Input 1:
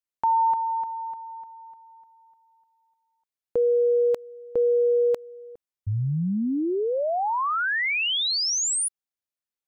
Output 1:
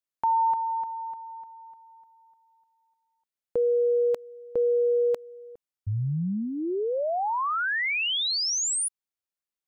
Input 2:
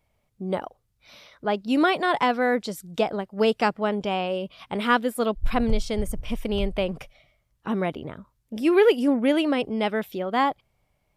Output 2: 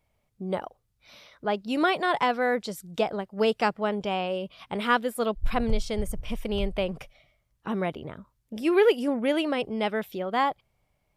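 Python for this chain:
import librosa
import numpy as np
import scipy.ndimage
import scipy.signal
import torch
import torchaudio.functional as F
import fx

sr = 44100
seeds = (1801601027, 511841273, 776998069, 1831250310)

y = fx.dynamic_eq(x, sr, hz=270.0, q=3.4, threshold_db=-41.0, ratio=4.0, max_db=-5)
y = F.gain(torch.from_numpy(y), -2.0).numpy()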